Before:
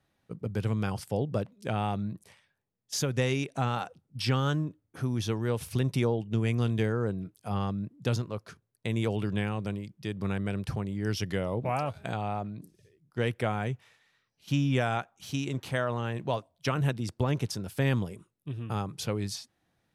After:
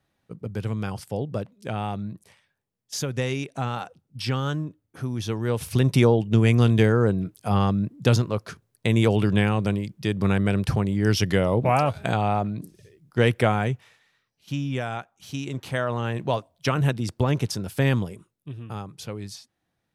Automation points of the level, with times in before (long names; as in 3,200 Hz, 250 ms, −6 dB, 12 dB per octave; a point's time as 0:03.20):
0:05.17 +1 dB
0:06.00 +9.5 dB
0:13.41 +9.5 dB
0:14.53 −1.5 dB
0:15.11 −1.5 dB
0:16.10 +5.5 dB
0:17.86 +5.5 dB
0:18.86 −3 dB